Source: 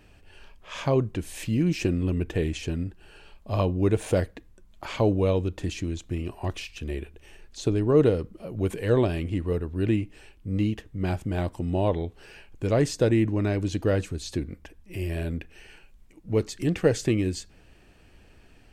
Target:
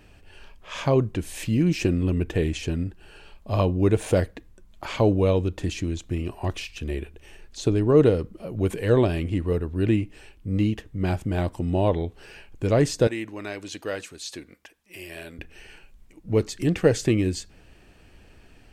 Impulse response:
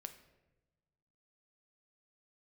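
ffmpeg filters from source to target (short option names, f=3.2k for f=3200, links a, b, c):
-filter_complex "[0:a]asettb=1/sr,asplit=3[a][b][c];[a]atrim=end=13.074[d];[b]atrim=start=13.07:end=15.39,asetpts=PTS-STARTPTS,afade=t=in:d=0.004:c=qsin,afade=t=out:st=2.316:d=0.004:c=qsin,highpass=f=1.2k:p=1[e];[c]atrim=start=15.386[f];[d][e]acrossfade=d=0.004:c1=hsin:c2=qsin[g];[g][f]acrossfade=d=0.004:c1=qsin:c2=hsin,volume=2.5dB"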